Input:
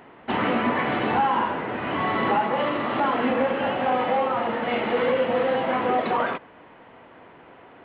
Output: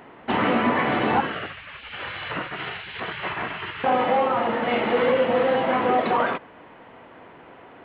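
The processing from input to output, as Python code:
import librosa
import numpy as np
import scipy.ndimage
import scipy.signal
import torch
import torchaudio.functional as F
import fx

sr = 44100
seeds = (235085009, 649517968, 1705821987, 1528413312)

y = fx.spec_gate(x, sr, threshold_db=-15, keep='weak', at=(1.2, 3.84))
y = F.gain(torch.from_numpy(y), 2.0).numpy()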